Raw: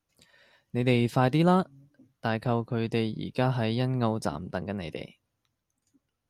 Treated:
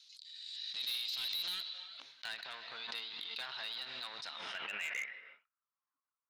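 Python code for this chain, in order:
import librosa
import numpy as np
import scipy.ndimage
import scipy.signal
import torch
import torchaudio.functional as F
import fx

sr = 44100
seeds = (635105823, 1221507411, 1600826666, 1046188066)

y = fx.low_shelf(x, sr, hz=83.0, db=10.5)
y = fx.leveller(y, sr, passes=3)
y = fx.filter_sweep_bandpass(y, sr, from_hz=4900.0, to_hz=1600.0, start_s=1.11, end_s=2.35, q=1.1)
y = fx.rev_gated(y, sr, seeds[0], gate_ms=350, shape='rising', drr_db=10.5)
y = fx.filter_sweep_bandpass(y, sr, from_hz=4000.0, to_hz=1100.0, start_s=4.29, end_s=5.72, q=5.8)
y = np.clip(y, -10.0 ** (-39.0 / 20.0), 10.0 ** (-39.0 / 20.0))
y = fx.pre_swell(y, sr, db_per_s=26.0)
y = y * 10.0 ** (5.0 / 20.0)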